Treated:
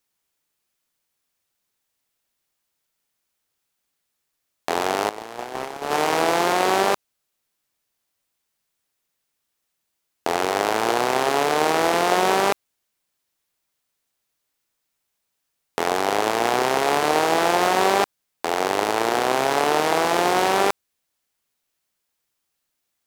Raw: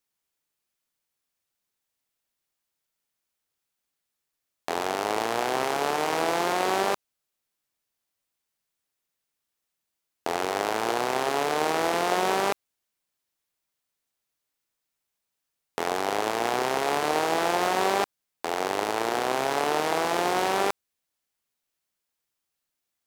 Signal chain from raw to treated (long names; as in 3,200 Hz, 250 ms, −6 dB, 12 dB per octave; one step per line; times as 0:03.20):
0:05.09–0:05.91: noise gate −23 dBFS, range −15 dB
level +5.5 dB